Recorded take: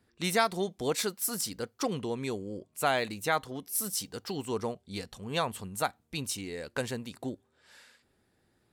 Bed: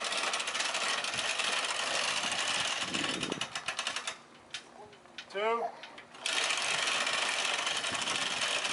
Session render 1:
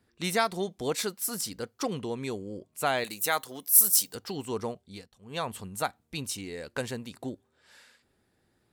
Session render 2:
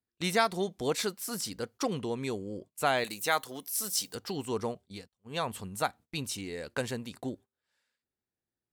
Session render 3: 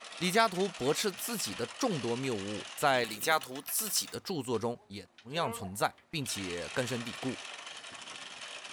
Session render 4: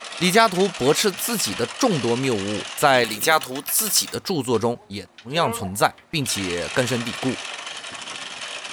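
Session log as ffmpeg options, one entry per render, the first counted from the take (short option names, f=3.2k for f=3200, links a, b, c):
-filter_complex "[0:a]asettb=1/sr,asplit=3[a][b][c];[a]atrim=end=3.044[d];[b]atrim=start=3.04:end=4.15,asetpts=PTS-STARTPTS,afade=t=in:d=0.004:c=qsin,afade=t=out:st=1.106:d=0.004:c=qsin,aemphasis=mode=production:type=bsi[e];[c]atrim=start=4.146[f];[d][e]acrossfade=d=0.004:c1=hsin:c2=qsin[g];[g][f]acrossfade=d=0.004:c1=qsin:c2=hsin,asplit=3[h][i][j];[h]atrim=end=5.09,asetpts=PTS-STARTPTS,afade=t=out:st=4.77:d=0.32:silence=0.16788[k];[i]atrim=start=5.09:end=5.19,asetpts=PTS-STARTPTS,volume=-15.5dB[l];[j]atrim=start=5.19,asetpts=PTS-STARTPTS,afade=t=in:d=0.32:silence=0.16788[m];[k][l][m]concat=n=3:v=0:a=1"
-filter_complex "[0:a]agate=range=-23dB:threshold=-49dB:ratio=16:detection=peak,acrossover=split=6700[a][b];[b]acompressor=threshold=-37dB:ratio=4:attack=1:release=60[c];[a][c]amix=inputs=2:normalize=0"
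-filter_complex "[1:a]volume=-12.5dB[a];[0:a][a]amix=inputs=2:normalize=0"
-af "volume=12dB,alimiter=limit=-3dB:level=0:latency=1"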